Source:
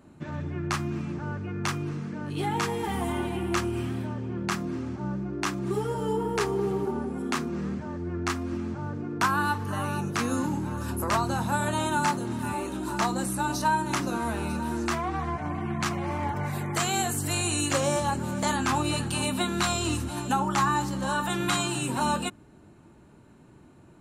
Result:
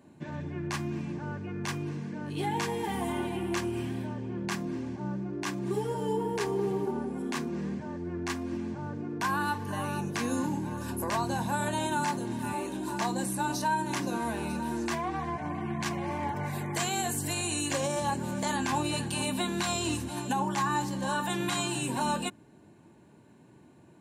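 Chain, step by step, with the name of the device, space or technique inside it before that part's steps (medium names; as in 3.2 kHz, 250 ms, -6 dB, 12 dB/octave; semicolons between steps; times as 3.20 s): PA system with an anti-feedback notch (high-pass 110 Hz 12 dB/octave; Butterworth band-stop 1.3 kHz, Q 5.2; peak limiter -17.5 dBFS, peak gain reduction 6 dB); trim -2 dB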